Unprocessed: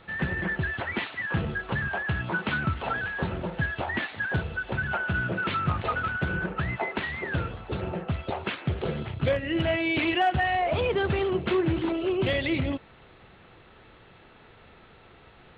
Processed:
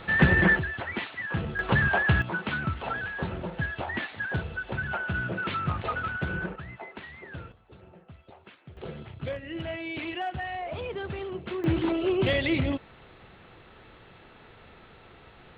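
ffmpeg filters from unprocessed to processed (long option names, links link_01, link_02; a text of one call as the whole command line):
ffmpeg -i in.wav -af "asetnsamples=nb_out_samples=441:pad=0,asendcmd='0.59 volume volume -2.5dB;1.59 volume volume 6dB;2.22 volume volume -2.5dB;6.56 volume volume -12dB;7.52 volume volume -20dB;8.77 volume volume -9dB;11.64 volume volume 1dB',volume=9dB" out.wav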